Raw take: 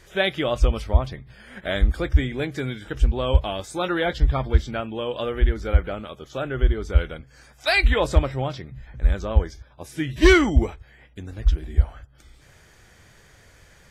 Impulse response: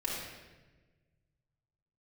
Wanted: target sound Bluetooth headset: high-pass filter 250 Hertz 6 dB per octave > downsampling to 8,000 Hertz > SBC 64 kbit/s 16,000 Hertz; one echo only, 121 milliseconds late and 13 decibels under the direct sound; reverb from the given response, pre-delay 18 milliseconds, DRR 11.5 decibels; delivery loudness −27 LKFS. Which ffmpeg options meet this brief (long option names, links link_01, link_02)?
-filter_complex "[0:a]aecho=1:1:121:0.224,asplit=2[link_01][link_02];[1:a]atrim=start_sample=2205,adelay=18[link_03];[link_02][link_03]afir=irnorm=-1:irlink=0,volume=-16.5dB[link_04];[link_01][link_04]amix=inputs=2:normalize=0,highpass=frequency=250:poles=1,aresample=8000,aresample=44100,volume=-0.5dB" -ar 16000 -c:a sbc -b:a 64k